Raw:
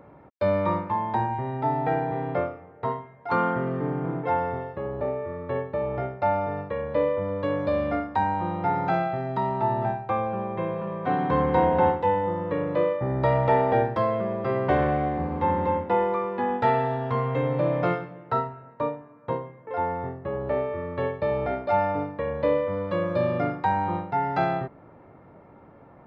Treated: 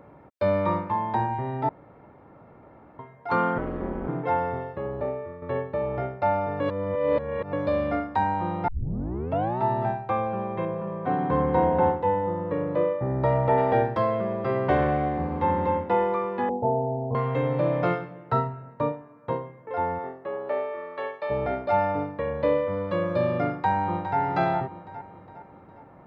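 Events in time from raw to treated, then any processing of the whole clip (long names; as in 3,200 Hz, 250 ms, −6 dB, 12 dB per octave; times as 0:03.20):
0:01.69–0:02.99: fill with room tone
0:03.58–0:04.08: ring modulation 96 Hz
0:04.82–0:05.42: fade out equal-power, to −8.5 dB
0:06.60–0:07.53: reverse
0:08.68: tape start 0.93 s
0:10.65–0:13.58: high-shelf EQ 2,300 Hz −11 dB
0:16.49–0:17.15: Butterworth low-pass 830 Hz 48 dB per octave
0:18.32–0:18.92: parametric band 140 Hz +7 dB 1.7 octaves
0:19.98–0:21.29: high-pass filter 300 Hz → 740 Hz
0:23.59–0:24.19: delay throw 410 ms, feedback 50%, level −8.5 dB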